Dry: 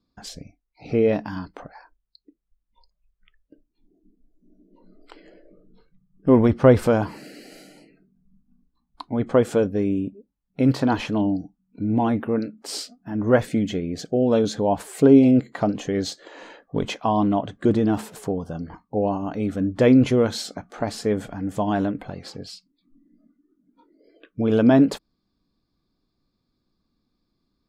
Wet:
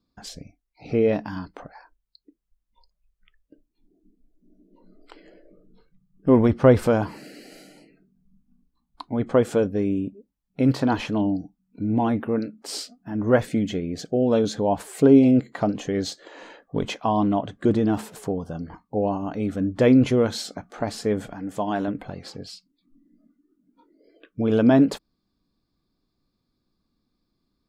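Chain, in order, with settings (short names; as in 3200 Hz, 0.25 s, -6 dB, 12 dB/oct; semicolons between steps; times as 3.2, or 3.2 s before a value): 21.33–21.88 HPF 260 Hz 6 dB/oct; gain -1 dB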